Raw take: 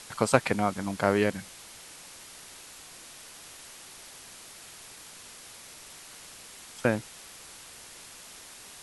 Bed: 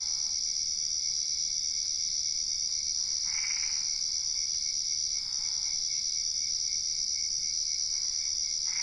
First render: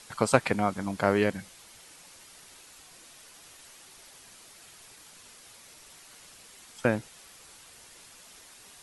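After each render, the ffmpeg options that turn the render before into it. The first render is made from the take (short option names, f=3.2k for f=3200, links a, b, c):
-af "afftdn=nr=6:nf=-48"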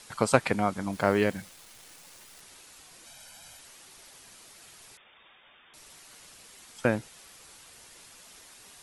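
-filter_complex "[0:a]asettb=1/sr,asplit=3[a][b][c];[a]atrim=end=0.934[d];[b]atrim=start=0.93:end=2.41,asetpts=PTS-STARTPTS,afade=t=in:d=0.004:c=qsin,afade=t=out:st=1.476:d=0.004:c=qsin,acrusher=bits=9:dc=4:mix=0:aa=0.000001[e];[c]atrim=start=2.406[f];[d][e]acrossfade=d=0.004:c1=hsin:c2=qsin[g];[g][f]acrossfade=d=0.004:c1=qsin:c2=hsin,asettb=1/sr,asplit=3[h][i][j];[h]atrim=end=3.064[k];[i]atrim=start=3.06:end=3.59,asetpts=PTS-STARTPTS,afade=t=in:d=0.004:c=qsin,afade=t=out:st=0.526:d=0.004:c=qsin,aecho=1:1:1.3:0.78,atrim=end_sample=23373[l];[j]atrim=start=3.586[m];[k][l]acrossfade=d=0.004:c1=hsin:c2=qsin[n];[n][m]acrossfade=d=0.004:c1=qsin:c2=hsin,asettb=1/sr,asplit=3[o][p][q];[o]atrim=end=4.974[r];[p]atrim=start=4.97:end=5.74,asetpts=PTS-STARTPTS,afade=t=in:d=0.004:c=qsin,afade=t=out:st=0.766:d=0.004:c=qsin,lowpass=f=3.1k:t=q:w=0.5098,lowpass=f=3.1k:t=q:w=0.6013,lowpass=f=3.1k:t=q:w=0.9,lowpass=f=3.1k:t=q:w=2.563,afreqshift=-3700[s];[q]atrim=start=5.736[t];[r][s]acrossfade=d=0.004:c1=hsin:c2=qsin[u];[u][t]acrossfade=d=0.004:c1=qsin:c2=hsin"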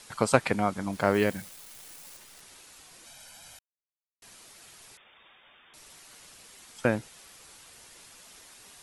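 -filter_complex "[0:a]asettb=1/sr,asplit=3[a][b][c];[a]atrim=end=1.144[d];[b]atrim=start=1.14:end=2.17,asetpts=PTS-STARTPTS,afade=t=in:d=0.004:c=qsin,afade=t=out:st=1.026:d=0.004:c=qsin,highshelf=f=12k:g=11.5[e];[c]atrim=start=2.166[f];[d][e]acrossfade=d=0.004:c1=hsin:c2=qsin[g];[g][f]acrossfade=d=0.004:c1=qsin:c2=hsin,asplit=3[h][i][j];[h]atrim=end=3.59,asetpts=PTS-STARTPTS,afade=t=out:st=3.586:d=0.004:c=hsin[k];[i]atrim=start=3.59:end=4.22,asetpts=PTS-STARTPTS,volume=0[l];[j]atrim=start=4.22,asetpts=PTS-STARTPTS,afade=t=in:d=0.004:c=hsin[m];[k][l][m]concat=n=3:v=0:a=1"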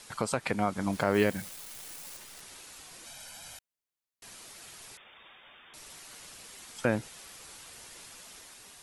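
-af "alimiter=limit=-15dB:level=0:latency=1:release=192,dynaudnorm=f=220:g=7:m=3dB"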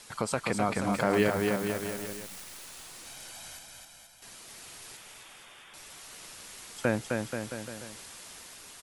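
-af "aecho=1:1:260|481|668.8|828.5|964.2:0.631|0.398|0.251|0.158|0.1"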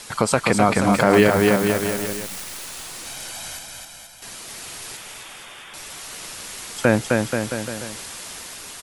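-af "volume=11.5dB,alimiter=limit=-2dB:level=0:latency=1"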